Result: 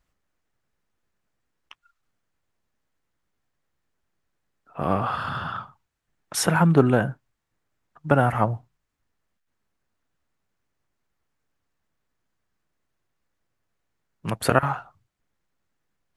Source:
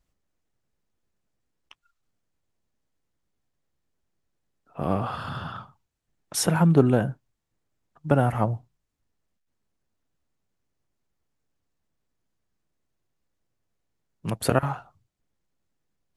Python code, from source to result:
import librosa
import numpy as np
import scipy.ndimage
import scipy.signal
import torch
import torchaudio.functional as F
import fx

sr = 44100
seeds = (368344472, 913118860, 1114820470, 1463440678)

y = fx.peak_eq(x, sr, hz=1500.0, db=7.0, octaves=1.9)